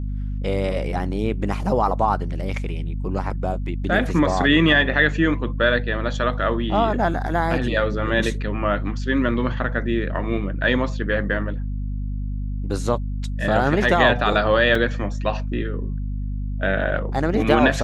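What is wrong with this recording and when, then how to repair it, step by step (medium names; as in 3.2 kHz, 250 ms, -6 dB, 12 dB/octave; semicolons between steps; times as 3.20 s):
hum 50 Hz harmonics 5 -26 dBFS
14.75 s: dropout 2.9 ms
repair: de-hum 50 Hz, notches 5; interpolate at 14.75 s, 2.9 ms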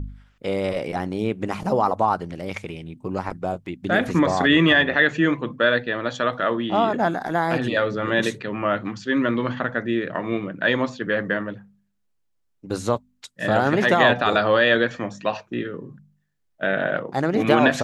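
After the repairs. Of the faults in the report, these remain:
nothing left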